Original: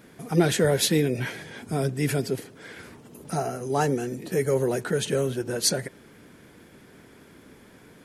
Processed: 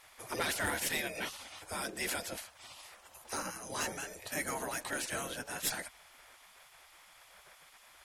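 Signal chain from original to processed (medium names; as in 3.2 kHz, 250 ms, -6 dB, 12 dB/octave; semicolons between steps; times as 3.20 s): spectral gate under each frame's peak -15 dB weak; Chebyshev shaper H 2 -7 dB, 5 -17 dB, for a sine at -18 dBFS; trim -4 dB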